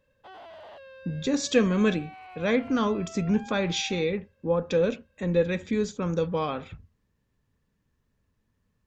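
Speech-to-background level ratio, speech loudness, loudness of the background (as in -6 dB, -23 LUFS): 19.0 dB, -27.0 LUFS, -46.0 LUFS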